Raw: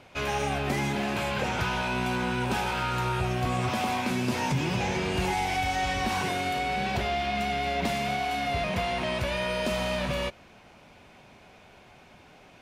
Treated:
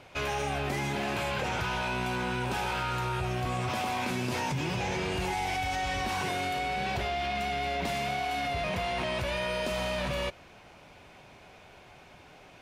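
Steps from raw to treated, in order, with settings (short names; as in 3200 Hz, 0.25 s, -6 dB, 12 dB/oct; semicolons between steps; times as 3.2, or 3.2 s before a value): bell 220 Hz -5.5 dB 0.45 oct; in parallel at 0 dB: negative-ratio compressor -32 dBFS; on the sum: gain -7 dB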